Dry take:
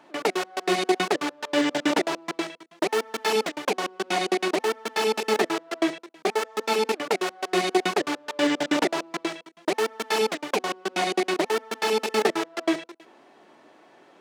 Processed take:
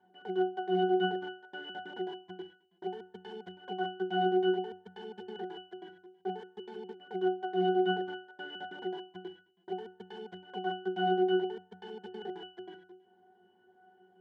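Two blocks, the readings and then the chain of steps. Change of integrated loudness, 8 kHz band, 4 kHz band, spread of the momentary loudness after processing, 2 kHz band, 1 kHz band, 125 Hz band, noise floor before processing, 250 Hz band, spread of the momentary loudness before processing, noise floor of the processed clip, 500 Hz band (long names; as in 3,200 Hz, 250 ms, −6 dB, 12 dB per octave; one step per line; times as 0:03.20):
−8.0 dB, below −40 dB, −13.5 dB, 19 LU, −13.0 dB, −8.0 dB, can't be measured, −55 dBFS, −8.0 dB, 6 LU, −67 dBFS, −8.0 dB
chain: output level in coarse steps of 14 dB
resonances in every octave F#, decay 0.36 s
level +8 dB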